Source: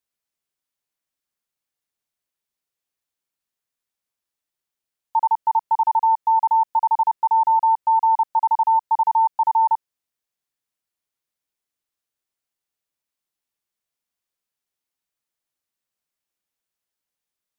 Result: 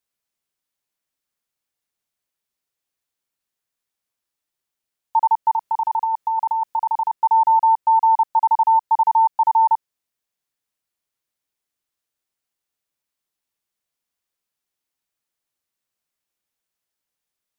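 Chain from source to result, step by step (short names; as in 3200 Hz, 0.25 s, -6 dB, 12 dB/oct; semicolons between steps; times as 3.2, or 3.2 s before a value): 5.54–7.12 negative-ratio compressor -22 dBFS, ratio -1; gain +2 dB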